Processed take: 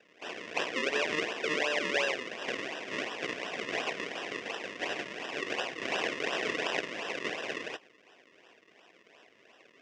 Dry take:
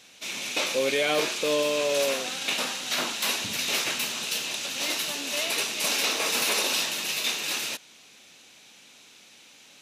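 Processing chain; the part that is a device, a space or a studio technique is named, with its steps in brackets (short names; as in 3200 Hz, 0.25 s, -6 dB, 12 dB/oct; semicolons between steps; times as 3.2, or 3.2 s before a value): circuit-bent sampling toy (decimation with a swept rate 39×, swing 100% 2.8 Hz; speaker cabinet 560–5600 Hz, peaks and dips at 570 Hz -4 dB, 860 Hz -9 dB, 1300 Hz -10 dB, 1900 Hz +6 dB, 2700 Hz +5 dB, 4200 Hz -9 dB)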